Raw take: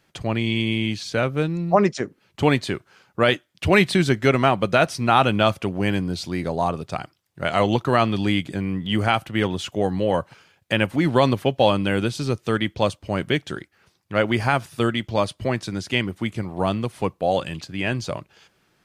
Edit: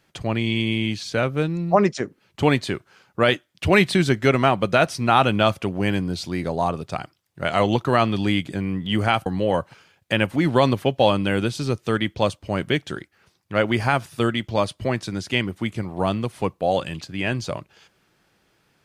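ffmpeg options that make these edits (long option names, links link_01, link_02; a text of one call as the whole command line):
ffmpeg -i in.wav -filter_complex "[0:a]asplit=2[link_01][link_02];[link_01]atrim=end=9.262[link_03];[link_02]atrim=start=9.858[link_04];[link_03][link_04]acrossfade=duration=0.004:curve1=hsin:curve2=hsin" out.wav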